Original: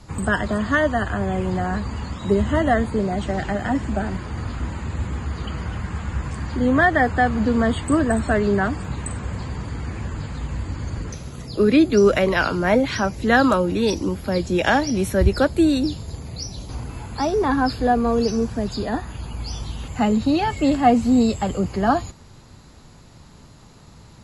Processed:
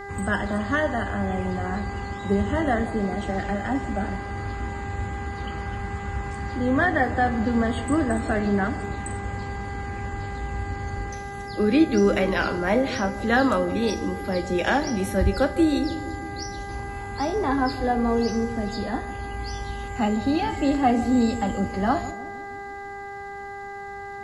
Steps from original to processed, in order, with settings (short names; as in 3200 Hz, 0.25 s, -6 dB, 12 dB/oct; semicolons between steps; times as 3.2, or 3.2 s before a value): buzz 400 Hz, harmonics 5, -32 dBFS -3 dB/oct; narrowing echo 0.156 s, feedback 68%, band-pass 350 Hz, level -12 dB; on a send at -8 dB: reverb, pre-delay 3 ms; on the sum: gain -5 dB